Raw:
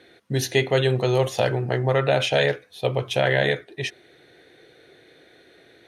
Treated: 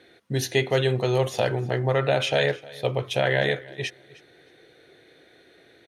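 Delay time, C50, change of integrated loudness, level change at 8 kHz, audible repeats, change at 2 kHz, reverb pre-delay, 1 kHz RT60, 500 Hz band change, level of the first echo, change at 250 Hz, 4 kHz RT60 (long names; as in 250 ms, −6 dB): 309 ms, no reverb audible, −2.0 dB, −2.0 dB, 2, −2.0 dB, no reverb audible, no reverb audible, −2.0 dB, −21.0 dB, −2.0 dB, no reverb audible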